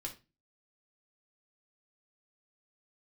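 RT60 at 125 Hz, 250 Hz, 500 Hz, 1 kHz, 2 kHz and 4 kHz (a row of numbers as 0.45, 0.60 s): 0.45, 0.40, 0.30, 0.25, 0.25, 0.25 s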